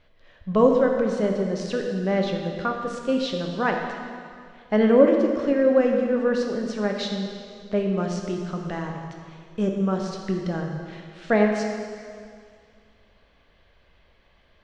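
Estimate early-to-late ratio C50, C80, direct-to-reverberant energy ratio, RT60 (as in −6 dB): 3.5 dB, 4.5 dB, 1.5 dB, 2.2 s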